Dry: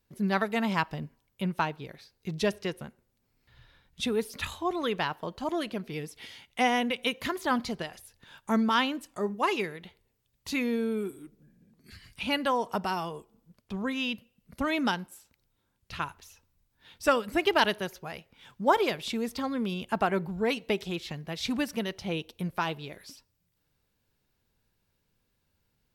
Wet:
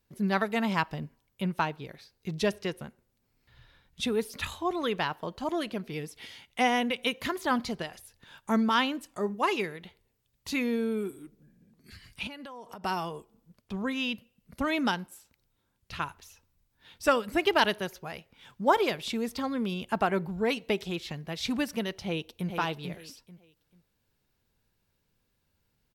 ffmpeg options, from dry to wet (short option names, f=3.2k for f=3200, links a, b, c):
-filter_complex "[0:a]asettb=1/sr,asplit=3[a][b][c];[a]atrim=end=12.274[d];[b]atrim=start=12.27:end=12.84,asetpts=PTS-STARTPTS,afade=t=in:d=0.004:c=qsin,afade=t=out:st=0.566:d=0.004:c=qsin,acompressor=threshold=-40dB:ratio=12:attack=3.2:release=140:knee=1:detection=peak[e];[c]atrim=start=12.836[f];[d][e]acrossfade=d=0.004:c1=hsin:c2=qsin[g];[g][f]acrossfade=d=0.004:c1=qsin:c2=hsin,asplit=2[h][i];[i]afade=t=in:st=22.04:d=0.01,afade=t=out:st=22.52:d=0.01,aecho=0:1:440|880|1320:0.473151|0.118288|0.029572[j];[h][j]amix=inputs=2:normalize=0"